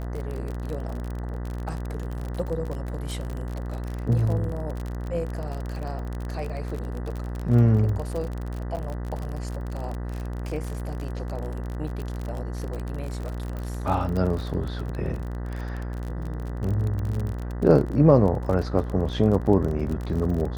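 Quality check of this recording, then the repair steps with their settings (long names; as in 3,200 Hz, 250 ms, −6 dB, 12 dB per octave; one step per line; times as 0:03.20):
mains buzz 60 Hz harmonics 33 −31 dBFS
surface crackle 38 per second −29 dBFS
0:08.76–0:08.77: drop-out 8.9 ms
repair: click removal
hum removal 60 Hz, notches 33
repair the gap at 0:08.76, 8.9 ms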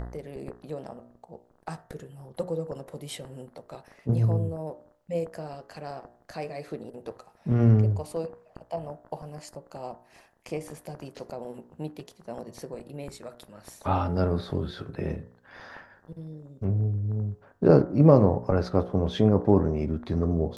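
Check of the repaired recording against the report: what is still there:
none of them is left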